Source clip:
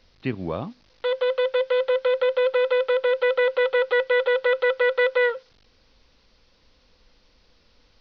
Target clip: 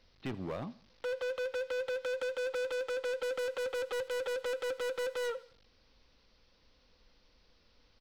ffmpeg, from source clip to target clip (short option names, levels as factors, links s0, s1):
-filter_complex "[0:a]asoftclip=type=hard:threshold=0.0501,asplit=2[s0][s1];[s1]aecho=0:1:82|164|246:0.106|0.0381|0.0137[s2];[s0][s2]amix=inputs=2:normalize=0,volume=0.447"